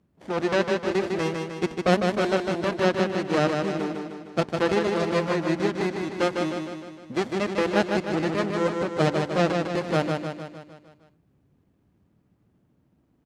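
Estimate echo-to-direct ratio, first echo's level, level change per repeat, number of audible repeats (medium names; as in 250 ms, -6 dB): -3.0 dB, -4.5 dB, -5.0 dB, 6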